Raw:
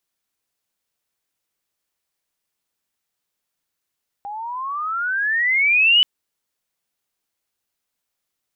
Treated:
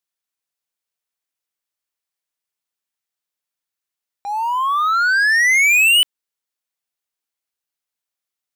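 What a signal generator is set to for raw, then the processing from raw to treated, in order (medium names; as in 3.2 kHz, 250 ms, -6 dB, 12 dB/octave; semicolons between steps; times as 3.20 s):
gliding synth tone sine, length 1.78 s, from 798 Hz, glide +23 st, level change +18 dB, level -10 dB
transient shaper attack -6 dB, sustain 0 dB; waveshaping leveller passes 3; bass shelf 490 Hz -7 dB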